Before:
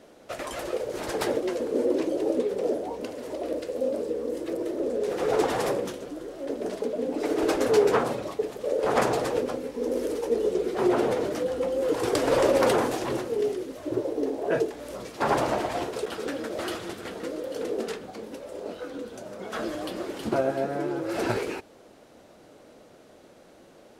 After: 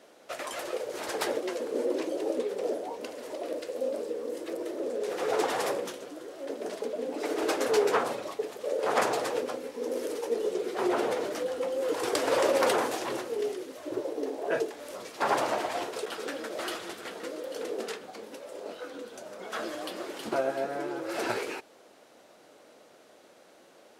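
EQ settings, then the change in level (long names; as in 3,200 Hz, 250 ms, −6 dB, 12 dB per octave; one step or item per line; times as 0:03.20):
high-pass filter 600 Hz 6 dB per octave
0.0 dB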